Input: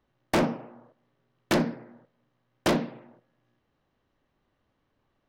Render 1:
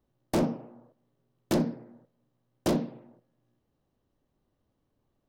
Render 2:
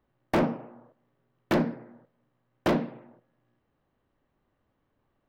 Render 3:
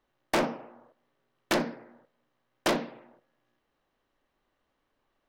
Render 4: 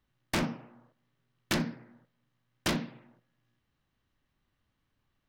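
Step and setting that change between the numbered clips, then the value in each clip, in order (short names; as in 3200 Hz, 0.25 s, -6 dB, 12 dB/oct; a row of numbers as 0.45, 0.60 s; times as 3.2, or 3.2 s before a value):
bell, frequency: 1900, 8100, 110, 530 Hz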